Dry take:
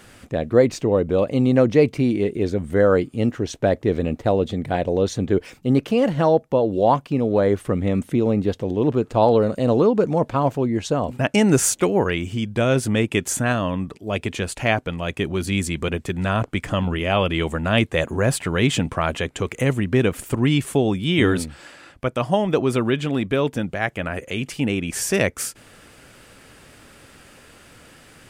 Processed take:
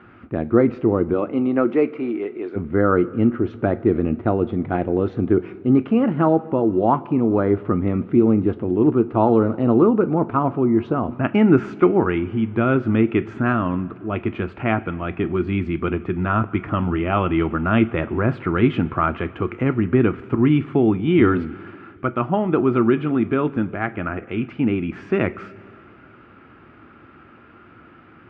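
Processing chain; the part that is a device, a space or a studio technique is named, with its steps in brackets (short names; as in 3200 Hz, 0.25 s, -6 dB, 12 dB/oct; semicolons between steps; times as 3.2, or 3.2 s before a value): 1.13–2.55 HPF 220 Hz -> 630 Hz 12 dB/oct; bass cabinet (speaker cabinet 69–2300 Hz, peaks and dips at 100 Hz +5 dB, 220 Hz +4 dB, 340 Hz +9 dB, 530 Hz -7 dB, 1300 Hz +9 dB, 1800 Hz -5 dB); two-slope reverb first 0.23 s, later 2.5 s, from -18 dB, DRR 11 dB; gain -1 dB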